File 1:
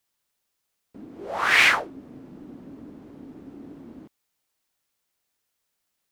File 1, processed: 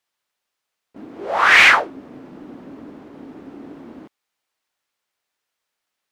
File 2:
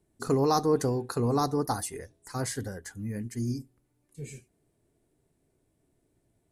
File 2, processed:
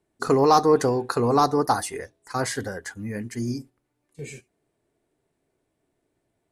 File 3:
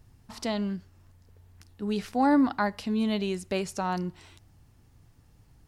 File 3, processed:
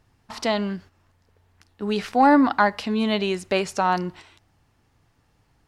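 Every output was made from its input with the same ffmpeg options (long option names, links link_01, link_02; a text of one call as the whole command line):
ffmpeg -i in.wav -filter_complex "[0:a]agate=range=-7dB:threshold=-46dB:ratio=16:detection=peak,asplit=2[link_01][link_02];[link_02]highpass=frequency=720:poles=1,volume=12dB,asoftclip=type=tanh:threshold=-4.5dB[link_03];[link_01][link_03]amix=inputs=2:normalize=0,lowpass=frequency=2800:poles=1,volume=-6dB,volume=4.5dB" out.wav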